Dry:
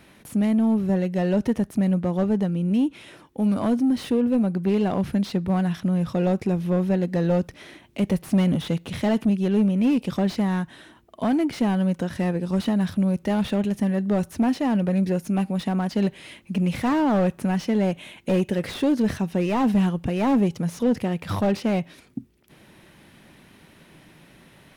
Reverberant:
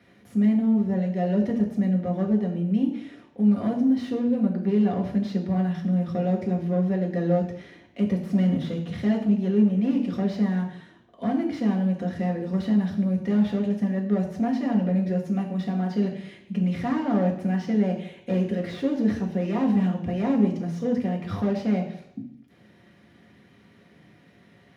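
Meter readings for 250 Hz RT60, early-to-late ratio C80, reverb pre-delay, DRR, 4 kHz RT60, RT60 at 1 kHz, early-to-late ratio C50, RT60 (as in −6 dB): 0.65 s, 11.0 dB, 3 ms, −0.5 dB, 0.75 s, 0.70 s, 8.0 dB, 0.75 s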